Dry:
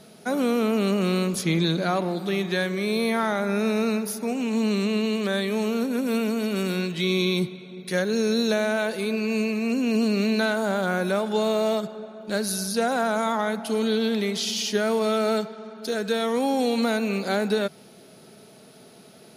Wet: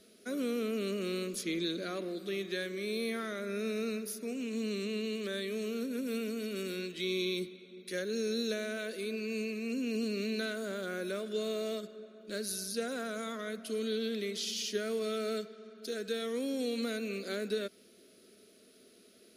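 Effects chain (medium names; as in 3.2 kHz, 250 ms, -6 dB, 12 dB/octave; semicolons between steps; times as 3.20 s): static phaser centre 350 Hz, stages 4; trim -8.5 dB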